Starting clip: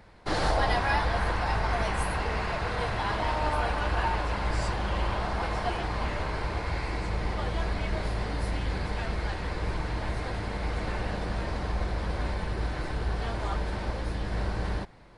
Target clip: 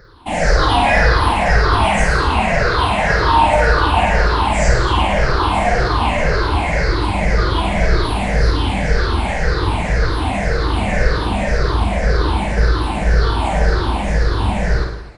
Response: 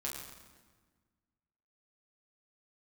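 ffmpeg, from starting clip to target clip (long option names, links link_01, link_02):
-af "afftfilt=real='re*pow(10,23/40*sin(2*PI*(0.57*log(max(b,1)*sr/1024/100)/log(2)-(-1.9)*(pts-256)/sr)))':imag='im*pow(10,23/40*sin(2*PI*(0.57*log(max(b,1)*sr/1024/100)/log(2)-(-1.9)*(pts-256)/sr)))':win_size=1024:overlap=0.75,dynaudnorm=framelen=110:gausssize=11:maxgain=5dB,aecho=1:1:50|107.5|173.6|249.7|337.1:0.631|0.398|0.251|0.158|0.1,volume=2.5dB"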